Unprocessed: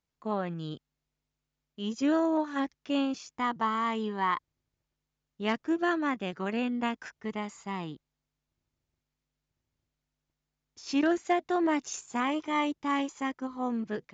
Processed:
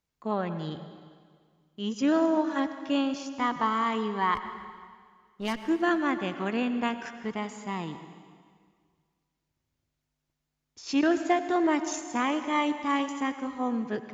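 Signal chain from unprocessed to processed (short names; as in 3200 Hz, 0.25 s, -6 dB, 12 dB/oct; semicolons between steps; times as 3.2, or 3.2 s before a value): 4.35–5.68 one-sided clip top -40.5 dBFS, bottom -21.5 dBFS; plate-style reverb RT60 1.9 s, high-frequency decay 0.95×, pre-delay 80 ms, DRR 10 dB; gain +2 dB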